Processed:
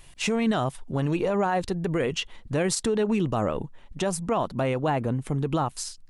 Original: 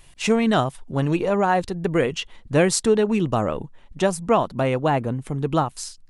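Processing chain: peak limiter -16.5 dBFS, peak gain reduction 10 dB

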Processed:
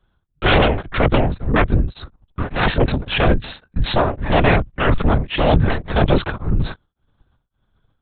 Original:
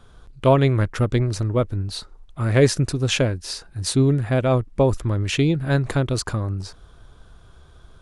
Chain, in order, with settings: gate -37 dBFS, range -29 dB; sine folder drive 15 dB, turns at -4.5 dBFS; LPC vocoder at 8 kHz whisper; tremolo of two beating tones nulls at 1.8 Hz; trim -4.5 dB

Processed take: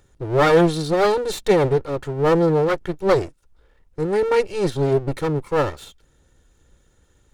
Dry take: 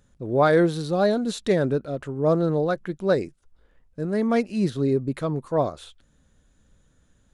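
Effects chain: comb filter that takes the minimum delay 2.2 ms; trim +5 dB

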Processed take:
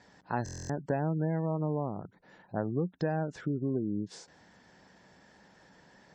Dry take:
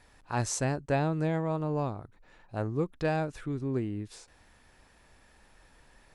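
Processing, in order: cabinet simulation 140–6900 Hz, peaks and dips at 180 Hz +9 dB, 1.2 kHz -6 dB, 2.5 kHz -9 dB, 3.8 kHz -4 dB; compression 6:1, threshold -31 dBFS, peak gain reduction 8.5 dB; spectral gate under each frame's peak -30 dB strong; buffer glitch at 0.44 s, samples 1024, times 10; trim +4 dB

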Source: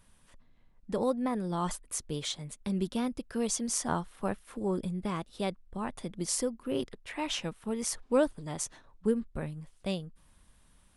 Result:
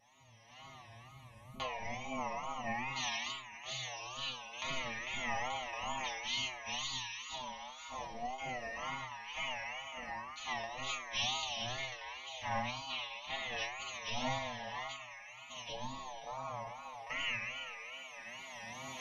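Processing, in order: spectral sustain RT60 1.41 s; recorder AGC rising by 21 dB/s; spectral gate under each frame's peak -20 dB weak; static phaser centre 2.6 kHz, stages 6; speed mistake 78 rpm record played at 45 rpm; inharmonic resonator 120 Hz, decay 0.5 s, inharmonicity 0.002; wow and flutter 140 cents; trim +16.5 dB

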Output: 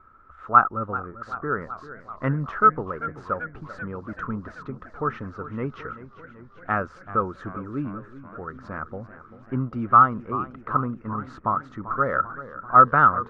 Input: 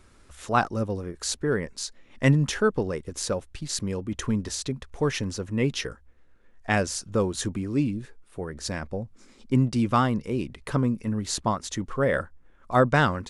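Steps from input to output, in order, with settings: resonant low-pass 1.3 kHz, resonance Q 13; modulated delay 388 ms, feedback 70%, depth 113 cents, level -15 dB; trim -5.5 dB

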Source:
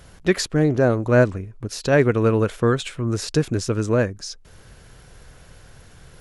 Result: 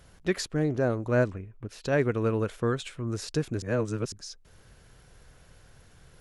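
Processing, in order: 1.32–1.83 s: resonant high shelf 3.7 kHz -7.5 dB, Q 1.5; 3.62–4.12 s: reverse; trim -8.5 dB

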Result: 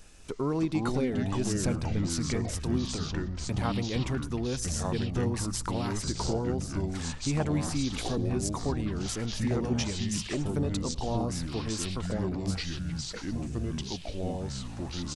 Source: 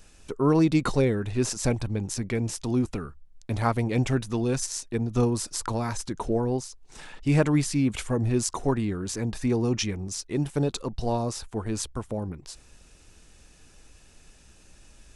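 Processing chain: compression 2:1, threshold -33 dBFS, peak gain reduction 9.5 dB; on a send: feedback delay 107 ms, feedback 31%, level -21.5 dB; on the sum: ever faster or slower copies 247 ms, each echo -4 st, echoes 3

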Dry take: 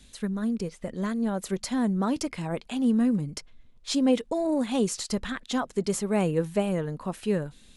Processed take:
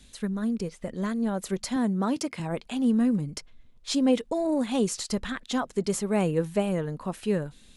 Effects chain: 1.76–2.40 s: high-pass 120 Hz

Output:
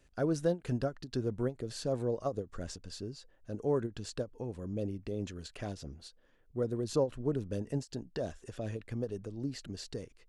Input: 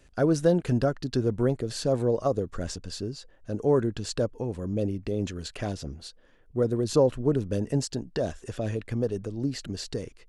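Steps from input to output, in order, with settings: endings held to a fixed fall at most 310 dB/s; trim -8 dB

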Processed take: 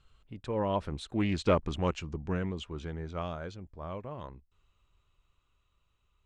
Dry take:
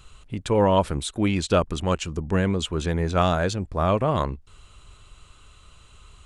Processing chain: Doppler pass-by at 1.57 s, 13 m/s, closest 6.7 m; distance through air 96 m; loudspeaker Doppler distortion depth 0.19 ms; trim -5 dB

